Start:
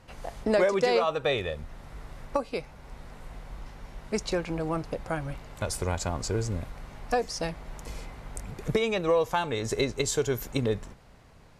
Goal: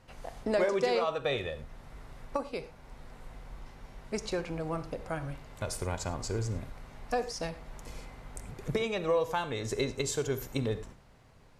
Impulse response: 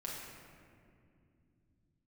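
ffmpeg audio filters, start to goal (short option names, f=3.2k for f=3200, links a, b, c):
-filter_complex "[0:a]asplit=2[a][b];[1:a]atrim=start_sample=2205,atrim=end_sample=3969,asetrate=33075,aresample=44100[c];[b][c]afir=irnorm=-1:irlink=0,volume=-6.5dB[d];[a][d]amix=inputs=2:normalize=0,volume=-7dB"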